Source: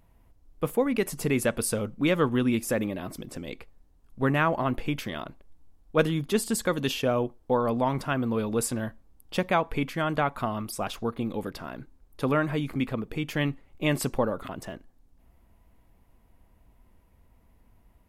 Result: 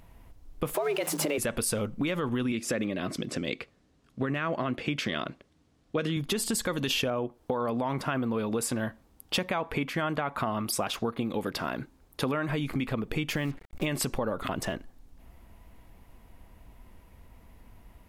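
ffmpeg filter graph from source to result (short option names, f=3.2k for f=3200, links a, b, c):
-filter_complex "[0:a]asettb=1/sr,asplit=3[a][b][c];[a]atrim=end=0.744[d];[b]atrim=start=0.74:end=1.38,asetpts=PTS-STARTPTS,afade=t=in:d=0.004:c=qsin,afade=t=out:st=0.636:d=0.004:c=qsin,aeval=exprs='val(0)+0.5*0.0106*sgn(val(0))':c=same,equalizer=f=730:w=2.1:g=4,afreqshift=150[e];[c]atrim=start=1.376[f];[d][e]acrossfade=d=0.004:c1=hsin:c2=qsin[g];[g][f]acrossfade=d=0.004:c1=qsin:c2=hsin,asettb=1/sr,asplit=3[h][i][j];[h]atrim=end=2.524[k];[i]atrim=start=2.52:end=6.17,asetpts=PTS-STARTPTS,afade=t=in:d=0.004:c=qsin,afade=t=out:st=3.646:d=0.004:c=qsin,highpass=120,lowpass=7.1k,equalizer=f=870:w=3.1:g=-8[l];[j]atrim=start=6.166[m];[k][l]acrossfade=d=0.004:c1=hsin:c2=qsin[n];[n][m]acrossfade=d=0.004:c1=qsin:c2=hsin,asettb=1/sr,asplit=3[o][p][q];[o]atrim=end=7.104[r];[p]atrim=start=7.1:end=12.49,asetpts=PTS-STARTPTS,afade=t=in:d=0.004:c=qsin,afade=t=out:st=5.386:d=0.004:c=qsin,highpass=f=110:p=1,adynamicequalizer=threshold=0.00794:dfrequency=2600:dqfactor=0.7:tfrequency=2600:tqfactor=0.7:attack=5:release=100:ratio=0.375:range=3:mode=cutabove:tftype=highshelf[s];[q]atrim=start=12.486[t];[r][s]acrossfade=d=0.004:c1=hsin:c2=qsin[u];[u][t]acrossfade=d=0.004:c1=qsin:c2=hsin,asettb=1/sr,asplit=3[v][w][x];[v]atrim=end=13.364[y];[w]atrim=start=13.36:end=13.86,asetpts=PTS-STARTPTS,afade=t=in:d=0.004:c=qsin,afade=t=out:st=0.496:d=0.004:c=qsin,equalizer=f=3.2k:w=1.1:g=-5.5,acrusher=bits=7:mix=0:aa=0.5[z];[x]atrim=start=13.856[aa];[y][z]acrossfade=d=0.004:c1=hsin:c2=qsin[ab];[ab][aa]acrossfade=d=0.004:c1=qsin:c2=hsin,alimiter=limit=-19.5dB:level=0:latency=1:release=41,acompressor=threshold=-34dB:ratio=6,equalizer=f=3.2k:t=o:w=2.6:g=3.5,volume=7dB"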